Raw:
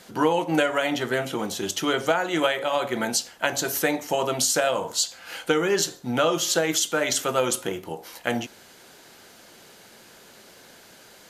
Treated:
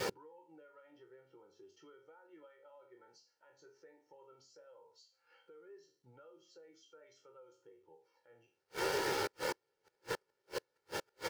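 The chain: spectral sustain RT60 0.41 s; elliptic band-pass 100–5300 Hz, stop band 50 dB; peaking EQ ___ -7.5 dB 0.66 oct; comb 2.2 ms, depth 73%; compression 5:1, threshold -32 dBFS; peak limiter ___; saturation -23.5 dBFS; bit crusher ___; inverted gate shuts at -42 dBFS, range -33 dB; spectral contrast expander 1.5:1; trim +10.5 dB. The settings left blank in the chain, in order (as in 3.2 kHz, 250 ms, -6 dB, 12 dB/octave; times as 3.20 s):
3.7 kHz, -21.5 dBFS, 8-bit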